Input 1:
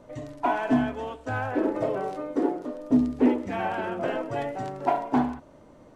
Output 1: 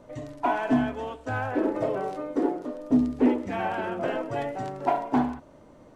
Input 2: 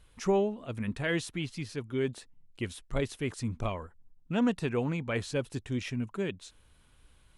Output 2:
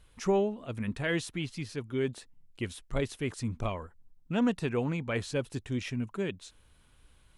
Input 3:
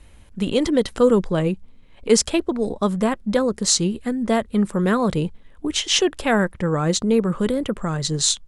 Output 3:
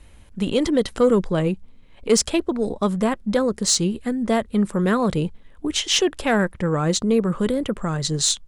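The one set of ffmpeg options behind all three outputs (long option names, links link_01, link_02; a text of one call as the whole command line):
ffmpeg -i in.wav -af "aeval=exprs='(tanh(2.24*val(0)+0.05)-tanh(0.05))/2.24':channel_layout=same" out.wav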